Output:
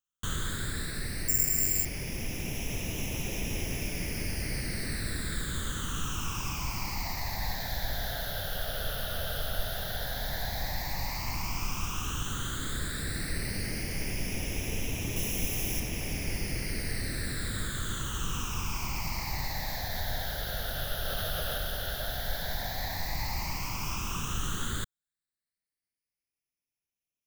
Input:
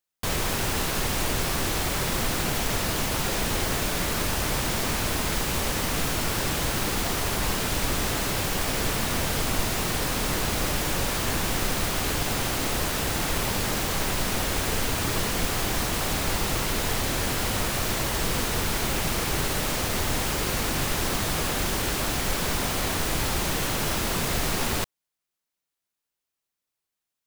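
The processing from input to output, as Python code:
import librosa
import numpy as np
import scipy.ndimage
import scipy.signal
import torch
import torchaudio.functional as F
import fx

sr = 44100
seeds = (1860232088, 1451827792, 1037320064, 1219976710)

y = fx.phaser_stages(x, sr, stages=8, low_hz=300.0, high_hz=1300.0, hz=0.082, feedback_pct=45)
y = fx.resample_bad(y, sr, factor=6, down='filtered', up='zero_stuff', at=(1.28, 1.85))
y = fx.rider(y, sr, range_db=4, speed_s=2.0)
y = fx.high_shelf(y, sr, hz=7200.0, db=9.0, at=(15.16, 15.8))
y = fx.env_flatten(y, sr, amount_pct=50, at=(21.05, 21.58))
y = y * librosa.db_to_amplitude(-7.5)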